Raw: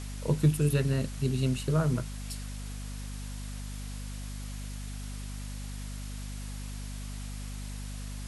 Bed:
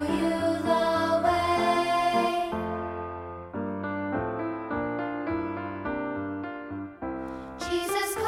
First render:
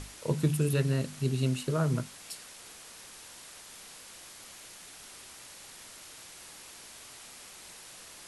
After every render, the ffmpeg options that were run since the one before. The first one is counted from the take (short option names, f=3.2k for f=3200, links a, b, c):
-af "bandreject=f=50:t=h:w=6,bandreject=f=100:t=h:w=6,bandreject=f=150:t=h:w=6,bandreject=f=200:t=h:w=6,bandreject=f=250:t=h:w=6"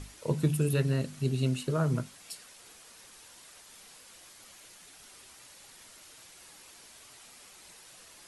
-af "afftdn=nr=6:nf=-50"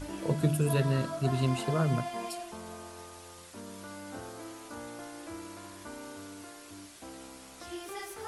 -filter_complex "[1:a]volume=-13.5dB[a];[0:a][a]amix=inputs=2:normalize=0"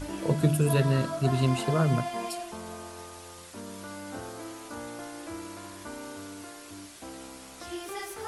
-af "volume=3.5dB"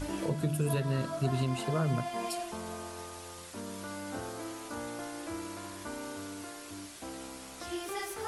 -af "alimiter=limit=-20.5dB:level=0:latency=1:release=461"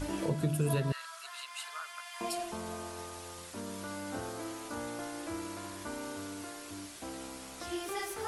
-filter_complex "[0:a]asettb=1/sr,asplit=3[a][b][c];[a]atrim=end=0.924[d];[b]atrim=start=0.92:end=2.21,asetpts=PTS-STARTPTS,afade=t=in:d=0.004:c=qsin,afade=t=out:st=1.286:d=0.004:c=qsin,highpass=f=1.2k:w=0.5412,highpass=f=1.2k:w=1.3066[e];[c]atrim=start=2.206[f];[d][e]acrossfade=d=0.004:c1=hsin:c2=qsin[g];[g][f]acrossfade=d=0.004:c1=qsin:c2=hsin"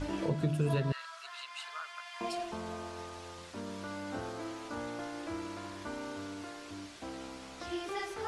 -af "lowpass=5.3k"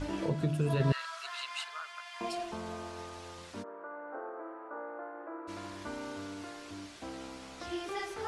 -filter_complex "[0:a]asplit=3[a][b][c];[a]afade=t=out:st=3.62:d=0.02[d];[b]asuperpass=centerf=750:order=8:qfactor=0.61,afade=t=in:st=3.62:d=0.02,afade=t=out:st=5.47:d=0.02[e];[c]afade=t=in:st=5.47:d=0.02[f];[d][e][f]amix=inputs=3:normalize=0,asplit=3[g][h][i];[g]atrim=end=0.802[j];[h]atrim=start=0.798:end=1.642,asetpts=PTS-STARTPTS,volume=5dB[k];[i]atrim=start=1.638[l];[j][k]acrossfade=d=0.004:c1=hsin:c2=hsin[m];[m][l]acrossfade=d=0.004:c1=hsin:c2=hsin"